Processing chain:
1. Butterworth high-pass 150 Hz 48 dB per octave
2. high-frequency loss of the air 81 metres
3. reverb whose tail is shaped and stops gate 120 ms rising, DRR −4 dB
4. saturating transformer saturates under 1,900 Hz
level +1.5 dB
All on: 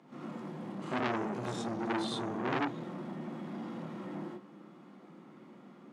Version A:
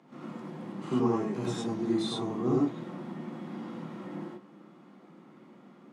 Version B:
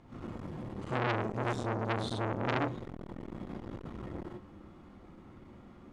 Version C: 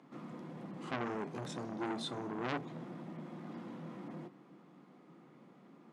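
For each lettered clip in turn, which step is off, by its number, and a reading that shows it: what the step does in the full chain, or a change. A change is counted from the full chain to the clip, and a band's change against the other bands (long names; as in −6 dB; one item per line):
4, change in crest factor −3.5 dB
1, 125 Hz band +7.0 dB
3, change in crest factor +2.0 dB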